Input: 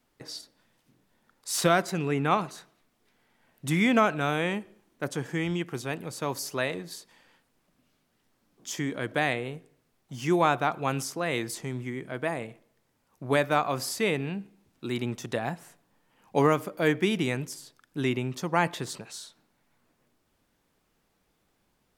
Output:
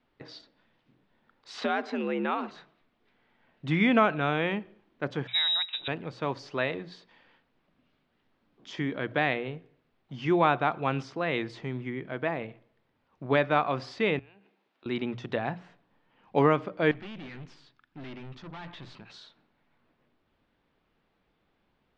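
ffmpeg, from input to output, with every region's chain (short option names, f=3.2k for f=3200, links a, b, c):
-filter_complex "[0:a]asettb=1/sr,asplit=3[a][b][c];[a]atrim=end=1.504[d];[b]atrim=start=1.5:end=2.51,asetpts=PTS-STARTPTS,afade=t=in:d=0.004:c=qsin,afade=t=out:st=1.006:d=0.004:c=qsin,afreqshift=68,acompressor=threshold=-26dB:ratio=2.5:attack=3.2:release=140:knee=1:detection=peak[e];[c]atrim=start=2.506[f];[d][e]acrossfade=d=0.004:c1=hsin:c2=qsin[g];[g][f]acrossfade=d=0.004:c1=qsin:c2=hsin,asettb=1/sr,asplit=3[h][i][j];[h]atrim=end=5.274[k];[i]atrim=start=5.27:end=5.88,asetpts=PTS-STARTPTS,afade=t=in:d=0.004:c=qsin,afade=t=out:st=0.606:d=0.004:c=qsin,equalizer=f=160:t=o:w=0.36:g=9.5,lowpass=f=3.4k:t=q:w=0.5098,lowpass=f=3.4k:t=q:w=0.6013,lowpass=f=3.4k:t=q:w=0.9,lowpass=f=3.4k:t=q:w=2.563,afreqshift=-4000[l];[j]atrim=start=5.876[m];[k][l]acrossfade=d=0.004:c1=hsin:c2=qsin[n];[n][m]acrossfade=d=0.004:c1=qsin:c2=hsin,asettb=1/sr,asplit=3[o][p][q];[o]atrim=end=14.194[r];[p]atrim=start=14.19:end=14.86,asetpts=PTS-STARTPTS,afade=t=in:d=0.004:c=qsin,afade=t=out:st=0.666:d=0.004:c=qsin,highpass=500,acompressor=threshold=-54dB:ratio=5:attack=3.2:release=140:knee=1:detection=peak[s];[q]atrim=start=14.856[t];[r][s]acrossfade=d=0.004:c1=hsin:c2=qsin[u];[u][t]acrossfade=d=0.004:c1=qsin:c2=hsin,asettb=1/sr,asplit=3[v][w][x];[v]atrim=end=16.914[y];[w]atrim=start=16.91:end=19.1,asetpts=PTS-STARTPTS,afade=t=in:d=0.004:c=qsin,afade=t=out:st=2.186:d=0.004:c=qsin,equalizer=f=490:w=1.7:g=-10,bandreject=f=60:t=h:w=6,bandreject=f=120:t=h:w=6,bandreject=f=180:t=h:w=6,aeval=exprs='(tanh(100*val(0)+0.45)-tanh(0.45))/100':c=same[z];[x]atrim=start=19.096[aa];[y][z]acrossfade=d=0.004:c1=hsin:c2=qsin[ab];[ab][aa]acrossfade=d=0.004:c1=qsin:c2=hsin,lowpass=f=3.8k:w=0.5412,lowpass=f=3.8k:w=1.3066,bandreject=f=60:t=h:w=6,bandreject=f=120:t=h:w=6,bandreject=f=180:t=h:w=6"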